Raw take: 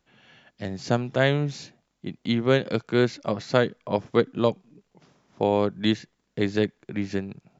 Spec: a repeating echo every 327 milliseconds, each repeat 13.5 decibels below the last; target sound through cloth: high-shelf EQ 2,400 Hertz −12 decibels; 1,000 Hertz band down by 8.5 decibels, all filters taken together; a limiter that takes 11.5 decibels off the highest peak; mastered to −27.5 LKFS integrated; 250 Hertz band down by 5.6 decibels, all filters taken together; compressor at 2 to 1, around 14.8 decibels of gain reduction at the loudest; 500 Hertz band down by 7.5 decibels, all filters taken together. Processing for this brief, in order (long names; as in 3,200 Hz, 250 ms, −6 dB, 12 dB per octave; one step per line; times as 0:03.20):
parametric band 250 Hz −5 dB
parametric band 500 Hz −5.5 dB
parametric band 1,000 Hz −7 dB
downward compressor 2 to 1, threshold −48 dBFS
brickwall limiter −35 dBFS
high-shelf EQ 2,400 Hz −12 dB
repeating echo 327 ms, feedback 21%, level −13.5 dB
level +21.5 dB